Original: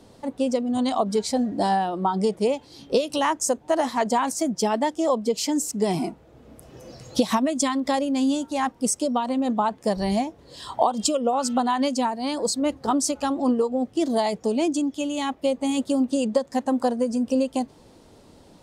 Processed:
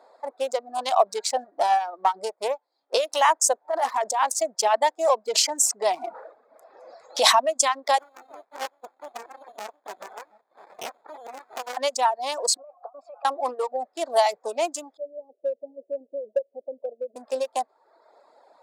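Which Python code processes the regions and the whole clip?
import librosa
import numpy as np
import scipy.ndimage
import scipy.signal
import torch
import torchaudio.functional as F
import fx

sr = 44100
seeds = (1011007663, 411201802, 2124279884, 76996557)

y = fx.chain(x, sr, fx.halfwave_gain(db=-3.0),
    fx.low_shelf(hz=110.0, db=7.5),
    fx.upward_expand(threshold_db=-43.0, expansion=1.5), at=(1.44, 2.94))
y = fx.chain(y, sr, fx.peak_eq(hz=3800.0, db=-4.5, octaves=0.37),
    fx.over_compress(threshold_db=-25.0, ratio=-1.0), at=(3.65, 4.24))
y = fx.chain(y, sr, fx.high_shelf(hz=12000.0, db=-11.0),
    fx.sustainer(db_per_s=53.0), at=(5.26, 7.45))
y = fx.chain(y, sr, fx.freq_invert(carrier_hz=3700),
    fx.echo_single(ms=712, db=-15.0),
    fx.running_max(window=65), at=(7.98, 11.77))
y = fx.chain(y, sr, fx.vowel_filter(vowel='a'),
    fx.over_compress(threshold_db=-43.0, ratio=-1.0),
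    fx.high_shelf(hz=3100.0, db=-8.0), at=(12.57, 13.25))
y = fx.chain(y, sr, fx.cheby1_lowpass(hz=590.0, order=6),
    fx.low_shelf(hz=320.0, db=-11.0), at=(14.97, 17.16))
y = fx.wiener(y, sr, points=15)
y = scipy.signal.sosfilt(scipy.signal.cheby1(3, 1.0, 640.0, 'highpass', fs=sr, output='sos'), y)
y = fx.dereverb_blind(y, sr, rt60_s=0.73)
y = y * librosa.db_to_amplitude(6.0)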